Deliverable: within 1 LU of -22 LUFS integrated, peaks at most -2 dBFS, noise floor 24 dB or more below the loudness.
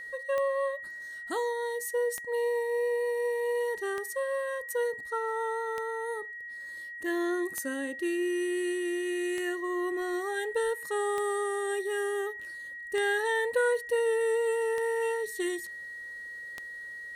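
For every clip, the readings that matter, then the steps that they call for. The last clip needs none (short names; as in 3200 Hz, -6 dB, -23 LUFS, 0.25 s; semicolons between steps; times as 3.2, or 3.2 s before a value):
clicks 10; steady tone 1900 Hz; tone level -39 dBFS; loudness -31.0 LUFS; peak -17.5 dBFS; loudness target -22.0 LUFS
-> de-click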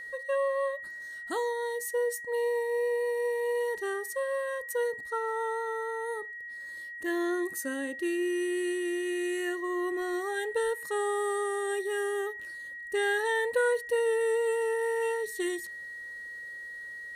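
clicks 0; steady tone 1900 Hz; tone level -39 dBFS
-> notch 1900 Hz, Q 30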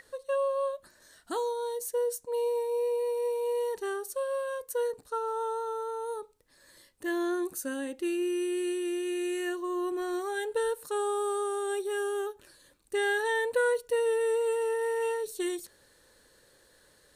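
steady tone none; loudness -31.0 LUFS; peak -18.0 dBFS; loudness target -22.0 LUFS
-> gain +9 dB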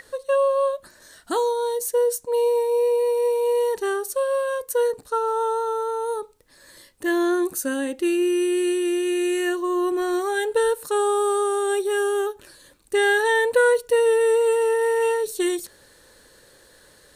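loudness -22.0 LUFS; peak -9.0 dBFS; noise floor -54 dBFS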